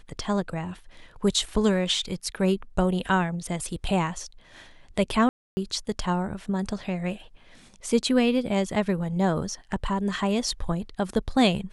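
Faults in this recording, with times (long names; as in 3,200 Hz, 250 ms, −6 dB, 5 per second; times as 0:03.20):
0:05.29–0:05.57: drop-out 280 ms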